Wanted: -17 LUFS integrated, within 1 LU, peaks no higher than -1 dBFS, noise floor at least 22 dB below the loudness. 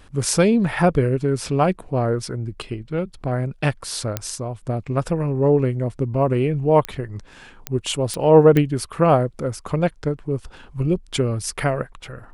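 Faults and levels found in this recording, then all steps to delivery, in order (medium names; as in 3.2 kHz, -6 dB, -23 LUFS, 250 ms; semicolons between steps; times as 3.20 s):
clicks found 5; loudness -21.0 LUFS; peak level -2.0 dBFS; loudness target -17.0 LUFS
-> de-click; trim +4 dB; peak limiter -1 dBFS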